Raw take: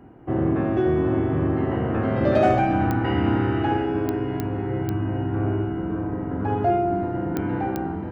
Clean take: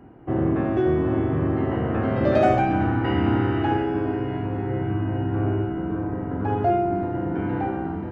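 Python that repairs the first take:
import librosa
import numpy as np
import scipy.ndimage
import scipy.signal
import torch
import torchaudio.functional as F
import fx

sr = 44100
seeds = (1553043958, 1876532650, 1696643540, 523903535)

y = fx.fix_declip(x, sr, threshold_db=-9.0)
y = fx.fix_declick_ar(y, sr, threshold=10.0)
y = fx.fix_echo_inverse(y, sr, delay_ms=200, level_db=-16.0)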